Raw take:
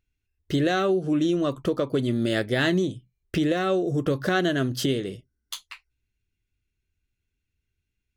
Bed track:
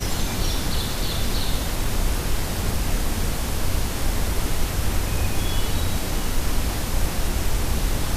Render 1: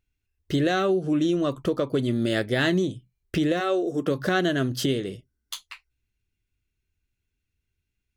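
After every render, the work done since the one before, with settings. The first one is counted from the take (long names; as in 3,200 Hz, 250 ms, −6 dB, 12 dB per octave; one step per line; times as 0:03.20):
0:03.59–0:04.17: high-pass filter 390 Hz → 130 Hz 24 dB per octave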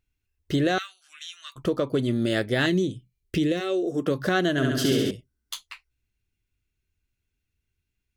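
0:00.78–0:01.56: inverse Chebyshev high-pass filter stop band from 480 Hz, stop band 60 dB
0:02.66–0:03.84: flat-topped bell 1,000 Hz −8 dB
0:04.51–0:05.11: flutter between parallel walls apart 11.6 metres, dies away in 1.4 s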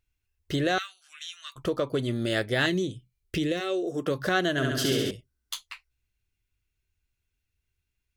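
parametric band 230 Hz −6 dB 1.6 octaves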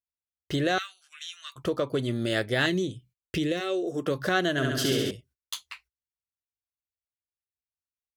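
high-pass filter 54 Hz
noise gate −56 dBFS, range −27 dB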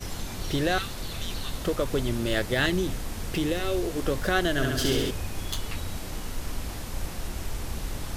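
mix in bed track −10 dB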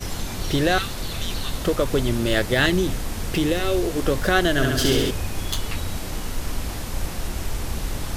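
level +5.5 dB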